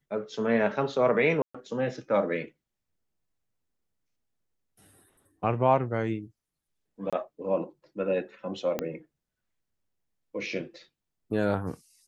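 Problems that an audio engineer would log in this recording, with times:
1.42–1.54 gap 0.125 s
7.1–7.13 gap 26 ms
8.79 pop -15 dBFS

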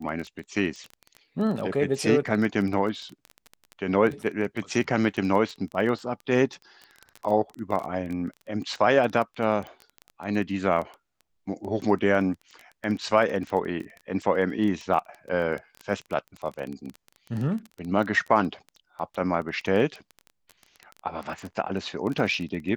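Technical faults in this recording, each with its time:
crackle 15/s -30 dBFS

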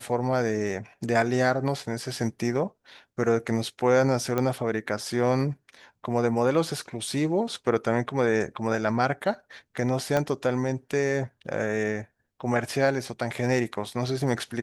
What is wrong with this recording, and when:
4.38 pop -13 dBFS
10.17 pop -12 dBFS

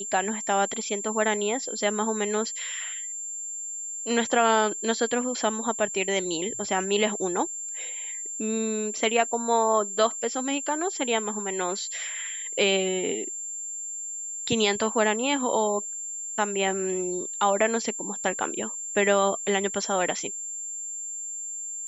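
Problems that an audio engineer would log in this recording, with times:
tone 7300 Hz -32 dBFS

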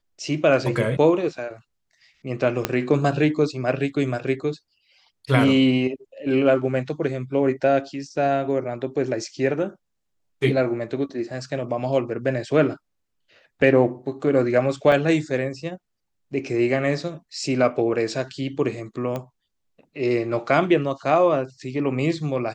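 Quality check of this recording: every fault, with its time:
2.65 pop -5 dBFS
14.92 gap 3.2 ms
19.16 pop -16 dBFS

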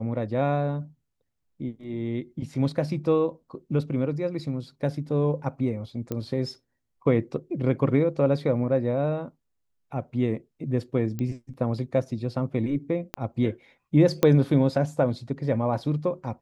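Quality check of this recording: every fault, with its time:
6.12 pop -17 dBFS
11.19 pop -19 dBFS
13.14 pop -14 dBFS
14.23 pop -8 dBFS

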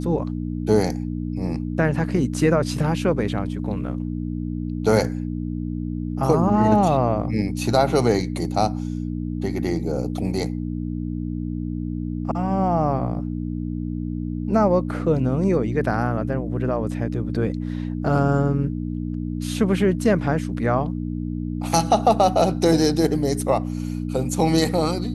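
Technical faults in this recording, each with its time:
hum 60 Hz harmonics 5 -27 dBFS

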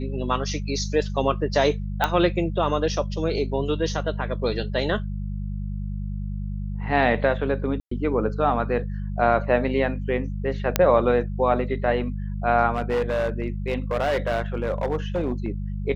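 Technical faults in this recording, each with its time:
hum 50 Hz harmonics 4 -29 dBFS
2.04 pop -7 dBFS
7.8–7.91 gap 0.114 s
10.76 pop -2 dBFS
12.74–15.5 clipped -19 dBFS

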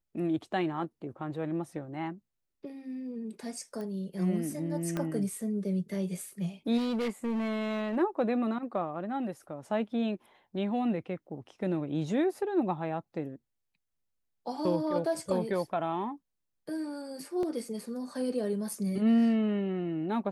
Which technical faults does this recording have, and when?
3.81 pop -29 dBFS
4.97 pop -19 dBFS
6.77–7.97 clipped -27.5 dBFS
17.43 gap 2.1 ms

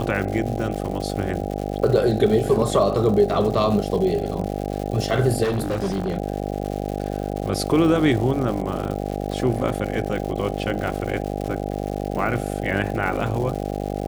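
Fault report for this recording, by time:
buzz 50 Hz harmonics 16 -27 dBFS
crackle 210/s -29 dBFS
5.43–6.15 clipped -19 dBFS
10.75 gap 2.3 ms

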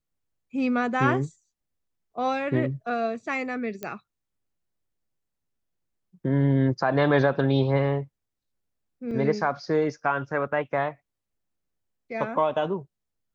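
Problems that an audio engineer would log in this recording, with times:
3.83 pop -18 dBFS
9.11 gap 3.2 ms

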